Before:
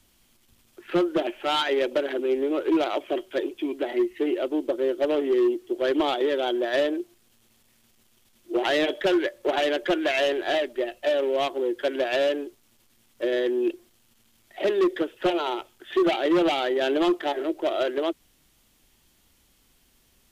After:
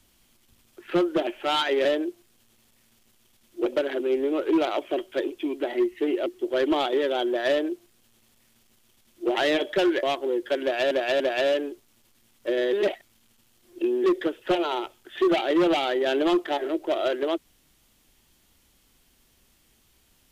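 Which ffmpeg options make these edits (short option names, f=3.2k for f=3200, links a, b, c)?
-filter_complex "[0:a]asplit=9[a][b][c][d][e][f][g][h][i];[a]atrim=end=1.852[j];[b]atrim=start=6.768:end=8.582[k];[c]atrim=start=1.848:end=4.452[l];[d]atrim=start=5.538:end=9.312[m];[e]atrim=start=11.358:end=12.242[n];[f]atrim=start=11.948:end=12.242[o];[g]atrim=start=11.948:end=13.482[p];[h]atrim=start=13.478:end=14.792,asetpts=PTS-STARTPTS,areverse[q];[i]atrim=start=14.788[r];[j][k]acrossfade=d=0.004:c1=hsin:c2=hsin[s];[s][l]acrossfade=d=0.004:c1=hsin:c2=hsin[t];[t][m]acrossfade=d=0.004:c1=hsin:c2=hsin[u];[u][n]acrossfade=d=0.004:c1=hsin:c2=hsin[v];[v][o]acrossfade=d=0.004:c1=hsin:c2=hsin[w];[w][p]acrossfade=d=0.004:c1=hsin:c2=hsin[x];[x][q]acrossfade=d=0.004:c1=hsin:c2=hsin[y];[y][r]acrossfade=d=0.004:c1=hsin:c2=hsin"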